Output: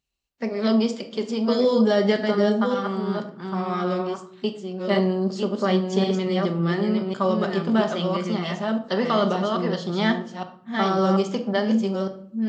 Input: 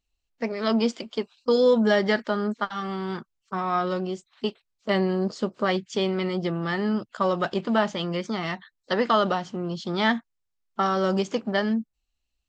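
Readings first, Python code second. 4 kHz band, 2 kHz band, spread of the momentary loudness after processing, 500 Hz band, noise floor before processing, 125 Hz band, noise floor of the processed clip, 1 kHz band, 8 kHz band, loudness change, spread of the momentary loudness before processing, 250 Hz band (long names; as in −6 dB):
+1.0 dB, −1.5 dB, 9 LU, +2.5 dB, −79 dBFS, +5.0 dB, −46 dBFS, 0.0 dB, can't be measured, +2.5 dB, 11 LU, +4.5 dB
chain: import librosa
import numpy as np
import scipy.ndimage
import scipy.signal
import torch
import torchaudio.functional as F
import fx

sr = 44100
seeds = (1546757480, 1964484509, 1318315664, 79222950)

y = fx.reverse_delay(x, sr, ms=549, wet_db=-4)
y = fx.room_shoebox(y, sr, seeds[0], volume_m3=850.0, walls='furnished', distance_m=1.2)
y = fx.dynamic_eq(y, sr, hz=1700.0, q=0.89, threshold_db=-37.0, ratio=4.0, max_db=-4)
y = scipy.signal.sosfilt(scipy.signal.butter(2, 61.0, 'highpass', fs=sr, output='sos'), y)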